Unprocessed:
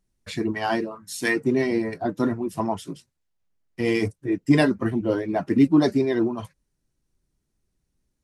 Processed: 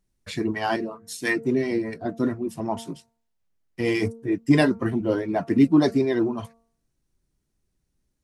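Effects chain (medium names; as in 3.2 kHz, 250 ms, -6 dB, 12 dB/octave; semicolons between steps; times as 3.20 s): de-hum 228.6 Hz, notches 6; 0.76–2.77 s: rotary cabinet horn 5 Hz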